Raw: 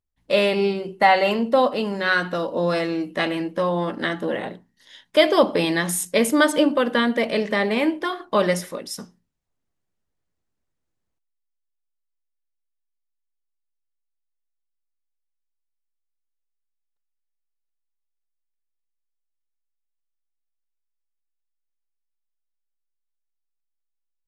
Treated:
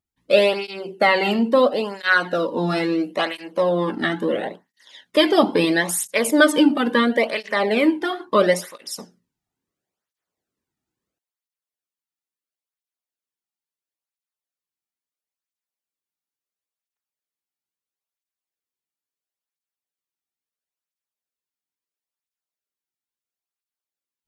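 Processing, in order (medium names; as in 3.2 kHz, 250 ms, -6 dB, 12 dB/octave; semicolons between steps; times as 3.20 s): cancelling through-zero flanger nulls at 0.74 Hz, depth 2 ms; trim +4.5 dB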